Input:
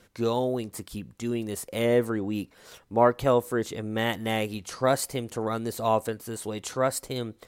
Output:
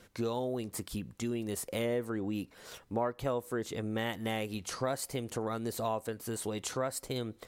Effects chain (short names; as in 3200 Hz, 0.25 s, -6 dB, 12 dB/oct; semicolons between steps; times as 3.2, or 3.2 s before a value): compressor 3:1, threshold -33 dBFS, peak gain reduction 14 dB